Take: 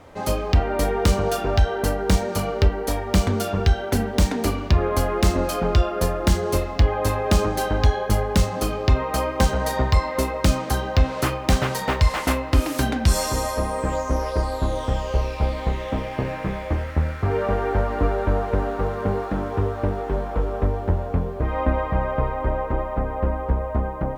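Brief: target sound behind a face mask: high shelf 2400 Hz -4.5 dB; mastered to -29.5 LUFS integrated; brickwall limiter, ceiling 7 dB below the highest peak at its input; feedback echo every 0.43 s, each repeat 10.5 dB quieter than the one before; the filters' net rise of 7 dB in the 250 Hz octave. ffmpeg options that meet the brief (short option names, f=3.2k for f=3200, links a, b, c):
-af "equalizer=f=250:t=o:g=9,alimiter=limit=-9.5dB:level=0:latency=1,highshelf=f=2.4k:g=-4.5,aecho=1:1:430|860|1290:0.299|0.0896|0.0269,volume=-7.5dB"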